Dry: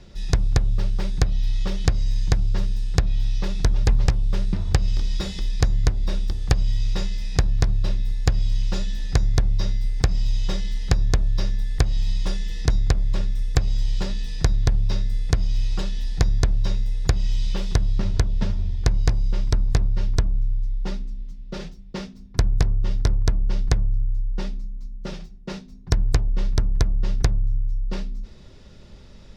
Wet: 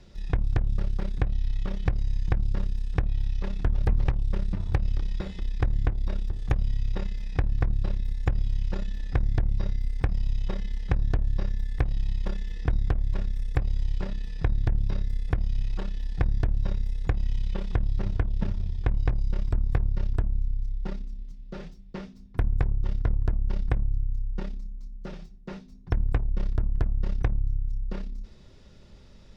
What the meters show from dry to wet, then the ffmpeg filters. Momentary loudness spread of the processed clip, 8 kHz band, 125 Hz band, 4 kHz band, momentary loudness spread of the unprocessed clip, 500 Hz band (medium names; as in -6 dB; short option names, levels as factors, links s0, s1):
9 LU, no reading, -5.0 dB, -15.0 dB, 9 LU, -5.5 dB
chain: -filter_complex "[0:a]acrossover=split=2600[s0][s1];[s1]acompressor=threshold=0.002:ratio=4:attack=1:release=60[s2];[s0][s2]amix=inputs=2:normalize=0,aeval=exprs='0.631*(cos(1*acos(clip(val(0)/0.631,-1,1)))-cos(1*PI/2))+0.0501*(cos(8*acos(clip(val(0)/0.631,-1,1)))-cos(8*PI/2))':c=same,volume=0.531"